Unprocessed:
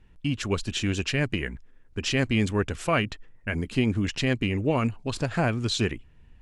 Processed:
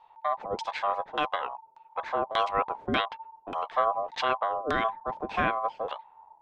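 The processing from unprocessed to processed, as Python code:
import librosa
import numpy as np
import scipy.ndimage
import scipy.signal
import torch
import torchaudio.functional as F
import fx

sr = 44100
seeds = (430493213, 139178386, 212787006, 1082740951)

y = x * np.sin(2.0 * np.pi * 900.0 * np.arange(len(x)) / sr)
y = fx.filter_lfo_lowpass(y, sr, shape='saw_down', hz=1.7, low_hz=400.0, high_hz=5000.0, q=1.1)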